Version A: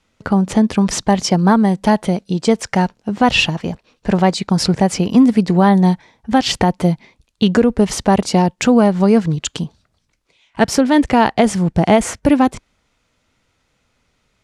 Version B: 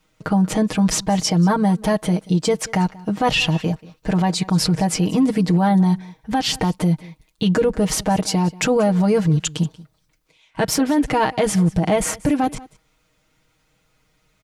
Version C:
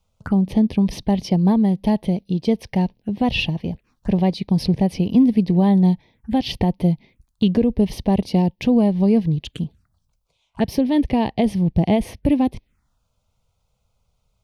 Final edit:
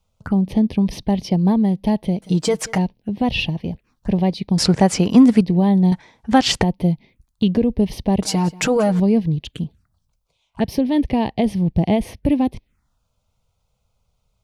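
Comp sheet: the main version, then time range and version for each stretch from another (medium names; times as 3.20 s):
C
2.22–2.78 s: from B
4.58–5.41 s: from A
5.92–6.63 s: from A
8.22–9.00 s: from B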